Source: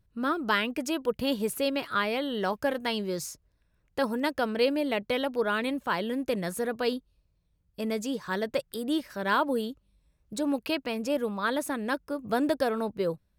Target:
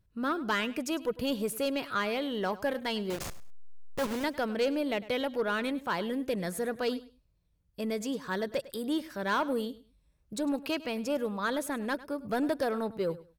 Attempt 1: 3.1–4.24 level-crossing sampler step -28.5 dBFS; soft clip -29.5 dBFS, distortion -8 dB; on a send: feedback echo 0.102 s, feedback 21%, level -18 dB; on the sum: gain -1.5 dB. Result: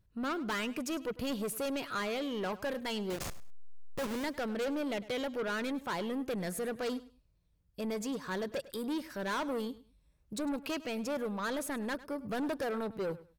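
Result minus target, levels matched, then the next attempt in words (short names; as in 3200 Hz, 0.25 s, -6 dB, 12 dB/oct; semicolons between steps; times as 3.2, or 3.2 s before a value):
soft clip: distortion +10 dB
3.1–4.24 level-crossing sampler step -28.5 dBFS; soft clip -19.5 dBFS, distortion -18 dB; on a send: feedback echo 0.102 s, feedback 21%, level -18 dB; on the sum: gain -1.5 dB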